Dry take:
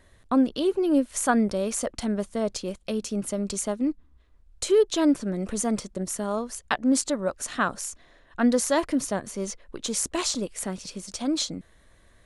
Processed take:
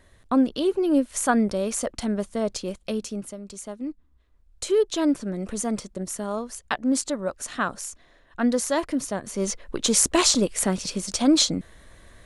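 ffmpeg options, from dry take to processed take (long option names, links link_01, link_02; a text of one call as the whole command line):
ffmpeg -i in.wav -af "volume=20dB,afade=type=out:start_time=2.92:duration=0.48:silence=0.251189,afade=type=in:start_time=3.4:duration=1.42:silence=0.316228,afade=type=in:start_time=9.2:duration=0.43:silence=0.354813" out.wav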